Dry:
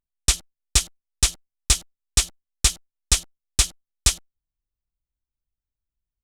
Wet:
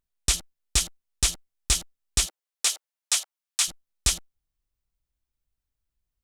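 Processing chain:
brickwall limiter −14 dBFS, peak gain reduction 10 dB
0:02.25–0:03.67: high-pass filter 360 Hz → 820 Hz 24 dB per octave
level +4 dB

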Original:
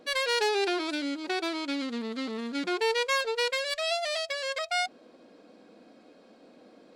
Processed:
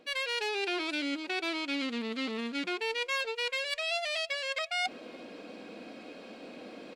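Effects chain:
parametric band 2,600 Hz +9 dB 0.74 octaves
reversed playback
downward compressor 4 to 1, threshold −41 dBFS, peak gain reduction 18 dB
reversed playback
far-end echo of a speakerphone 350 ms, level −27 dB
level +8 dB

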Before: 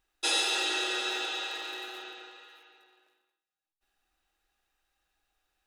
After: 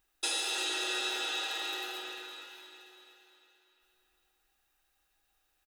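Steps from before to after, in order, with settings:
high-shelf EQ 9,400 Hz +11 dB
downward compressor 4 to 1, threshold −31 dBFS, peak gain reduction 8 dB
on a send: repeating echo 345 ms, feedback 54%, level −11 dB

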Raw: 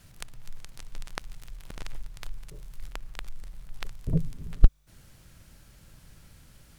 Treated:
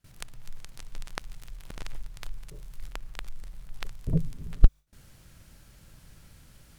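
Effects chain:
noise gate with hold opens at −46 dBFS

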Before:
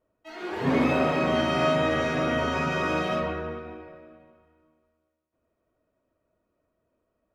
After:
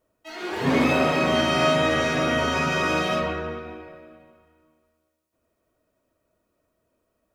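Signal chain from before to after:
high-shelf EQ 3,000 Hz +9 dB
level +2 dB

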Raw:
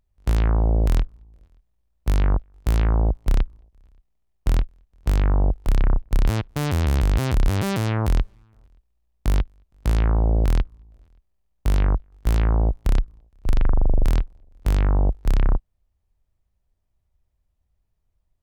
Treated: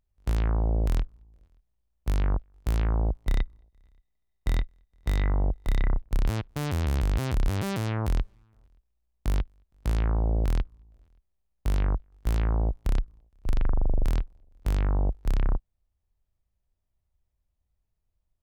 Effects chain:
0:03.26–0:06.00: hollow resonant body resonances 2,000/3,700 Hz, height 16 dB, ringing for 35 ms
level −6 dB

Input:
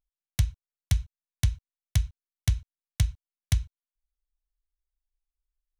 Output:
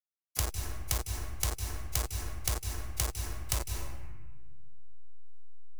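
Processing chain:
hold until the input has moved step −29.5 dBFS
bass and treble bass −14 dB, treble +15 dB
brickwall limiter −10.5 dBFS, peak gain reduction 6.5 dB
harmonic and percussive parts rebalanced percussive −10 dB
in parallel at +1.5 dB: compressor whose output falls as the input rises −47 dBFS
on the sum: sine wavefolder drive 12 dB, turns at −10 dBFS
on a send at −6 dB: convolution reverb RT60 0.80 s, pre-delay 151 ms
on the sum: multiband upward and downward compressor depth 70%
level −7.5 dB

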